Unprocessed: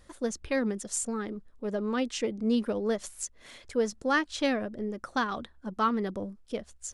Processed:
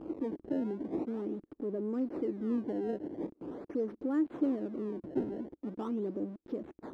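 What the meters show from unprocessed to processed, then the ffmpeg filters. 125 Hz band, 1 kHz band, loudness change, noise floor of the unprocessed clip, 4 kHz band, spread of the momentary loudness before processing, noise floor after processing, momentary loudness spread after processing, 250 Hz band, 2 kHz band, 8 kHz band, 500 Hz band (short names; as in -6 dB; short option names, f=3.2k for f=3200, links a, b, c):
-4.0 dB, -15.5 dB, -5.0 dB, -57 dBFS, under -25 dB, 11 LU, -76 dBFS, 9 LU, -2.0 dB, -22.5 dB, under -35 dB, -5.0 dB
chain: -filter_complex "[0:a]aeval=exprs='val(0)+0.5*0.0224*sgn(val(0))':c=same,asplit=2[a][b];[b]acompressor=threshold=-36dB:ratio=6,volume=1dB[c];[a][c]amix=inputs=2:normalize=0,acrusher=samples=21:mix=1:aa=0.000001:lfo=1:lforange=33.6:lforate=0.43,aeval=exprs='0.224*(cos(1*acos(clip(val(0)/0.224,-1,1)))-cos(1*PI/2))+0.0126*(cos(8*acos(clip(val(0)/0.224,-1,1)))-cos(8*PI/2))':c=same,bandpass=f=320:t=q:w=4:csg=0"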